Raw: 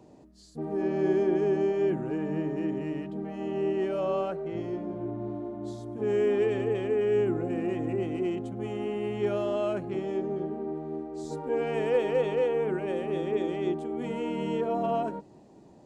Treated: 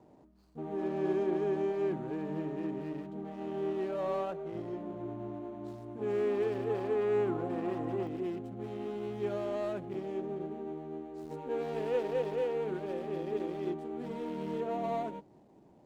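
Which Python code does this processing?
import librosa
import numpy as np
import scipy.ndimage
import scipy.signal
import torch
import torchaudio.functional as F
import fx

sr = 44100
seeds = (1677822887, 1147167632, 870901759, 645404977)

y = scipy.ndimage.median_filter(x, 25, mode='constant')
y = fx.peak_eq(y, sr, hz=990.0, db=fx.steps((0.0, 6.0), (6.69, 12.5), (8.07, 3.0)), octaves=1.2)
y = F.gain(torch.from_numpy(y), -6.5).numpy()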